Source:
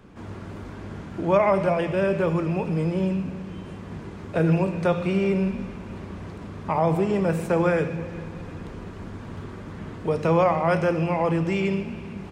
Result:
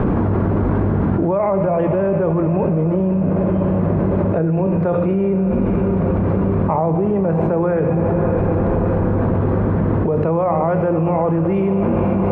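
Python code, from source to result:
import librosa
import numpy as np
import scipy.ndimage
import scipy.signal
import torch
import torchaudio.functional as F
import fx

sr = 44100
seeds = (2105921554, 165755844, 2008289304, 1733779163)

y = scipy.signal.sosfilt(scipy.signal.butter(2, 1000.0, 'lowpass', fs=sr, output='sos'), x)
y = fx.echo_diffused(y, sr, ms=571, feedback_pct=66, wet_db=-14.5)
y = fx.env_flatten(y, sr, amount_pct=100)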